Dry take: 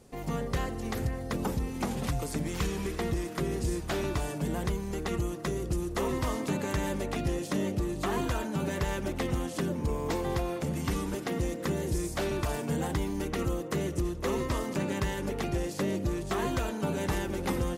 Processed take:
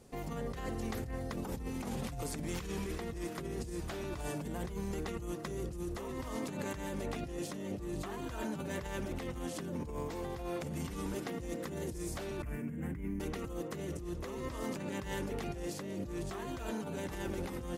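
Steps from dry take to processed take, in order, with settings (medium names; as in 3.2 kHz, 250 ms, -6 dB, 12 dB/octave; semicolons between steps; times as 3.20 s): 12.42–13.20 s: FFT filter 150 Hz 0 dB, 230 Hz +2 dB, 800 Hz -17 dB, 2.2 kHz -1 dB, 3.8 kHz -27 dB, 15 kHz -7 dB; compressor with a negative ratio -34 dBFS, ratio -1; trim -5 dB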